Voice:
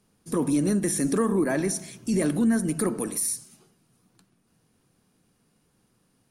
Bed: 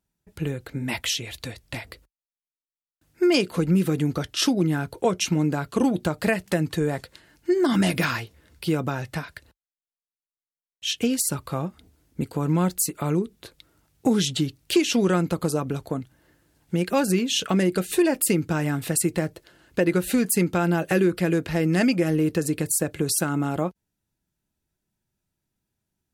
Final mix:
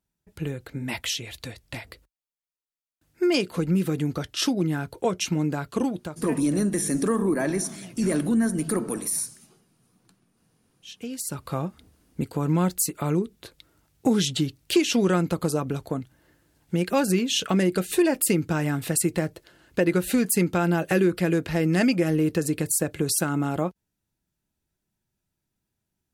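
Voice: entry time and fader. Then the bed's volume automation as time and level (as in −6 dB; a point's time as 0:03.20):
5.90 s, 0.0 dB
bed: 0:05.77 −2.5 dB
0:06.62 −23 dB
0:10.63 −23 dB
0:11.51 −0.5 dB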